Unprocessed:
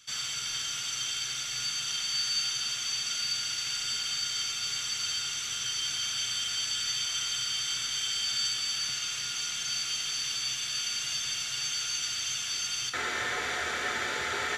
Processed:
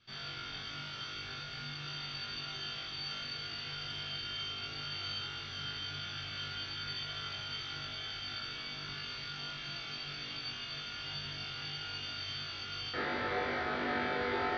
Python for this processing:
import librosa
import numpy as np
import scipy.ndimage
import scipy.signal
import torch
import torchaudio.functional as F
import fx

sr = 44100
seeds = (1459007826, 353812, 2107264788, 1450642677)

y = scipy.signal.sosfilt(scipy.signal.ellip(4, 1.0, 60, 4700.0, 'lowpass', fs=sr, output='sos'), x)
y = fx.tilt_shelf(y, sr, db=9.0, hz=920.0)
y = fx.hum_notches(y, sr, base_hz=50, count=4)
y = fx.room_flutter(y, sr, wall_m=3.5, rt60_s=0.6)
y = y * 10.0 ** (-4.0 / 20.0)